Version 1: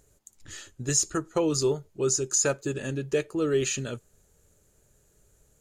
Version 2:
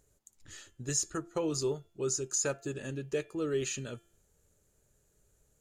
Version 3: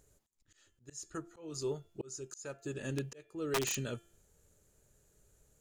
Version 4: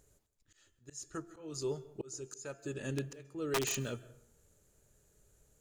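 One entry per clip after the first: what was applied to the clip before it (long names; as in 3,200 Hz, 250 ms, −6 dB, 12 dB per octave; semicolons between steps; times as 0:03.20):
hum removal 343.4 Hz, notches 10; level −7 dB
volume swells 643 ms; wrap-around overflow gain 28 dB; level +2 dB
dense smooth reverb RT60 0.68 s, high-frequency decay 0.5×, pre-delay 120 ms, DRR 18 dB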